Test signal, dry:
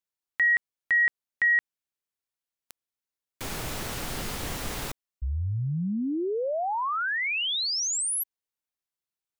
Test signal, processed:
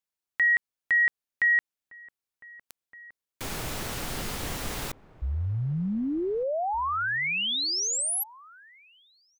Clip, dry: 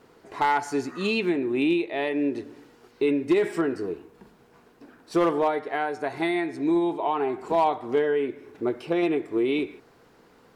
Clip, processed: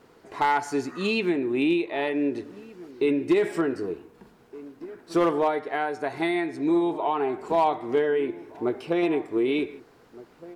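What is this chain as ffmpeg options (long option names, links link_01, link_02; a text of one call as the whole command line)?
ffmpeg -i in.wav -filter_complex "[0:a]asplit=2[link_01][link_02];[link_02]adelay=1516,volume=-18dB,highshelf=frequency=4000:gain=-34.1[link_03];[link_01][link_03]amix=inputs=2:normalize=0" out.wav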